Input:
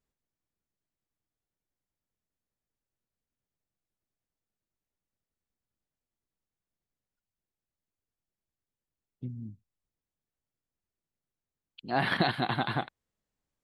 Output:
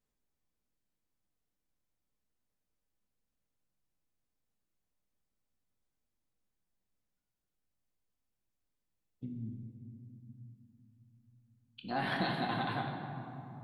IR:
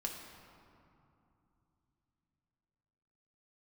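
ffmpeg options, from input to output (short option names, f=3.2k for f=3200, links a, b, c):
-filter_complex "[0:a]acompressor=threshold=-42dB:ratio=1.5[a];[1:a]atrim=start_sample=2205,asetrate=39249,aresample=44100[b];[a][b]afir=irnorm=-1:irlink=0"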